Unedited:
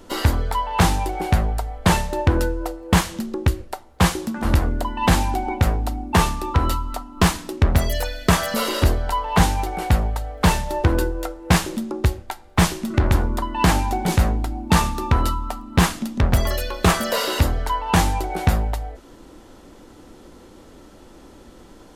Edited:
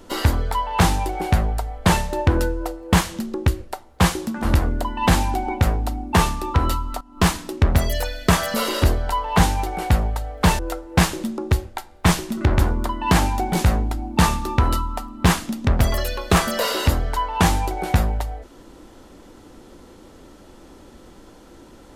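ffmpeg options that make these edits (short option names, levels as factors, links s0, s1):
-filter_complex "[0:a]asplit=3[s0][s1][s2];[s0]atrim=end=7.01,asetpts=PTS-STARTPTS,afade=t=out:st=7.006:d=0.004:c=hsin:silence=0.149624[s3];[s1]atrim=start=7.01:end=10.592,asetpts=PTS-STARTPTS,afade=t=in:d=0.26:silence=0.149624[s4];[s2]atrim=start=11.118[s5];[s3][s4]concat=n=2:v=0:a=1[s6];[s6][s5]acrossfade=d=0.004:c1=hsin:c2=hsin"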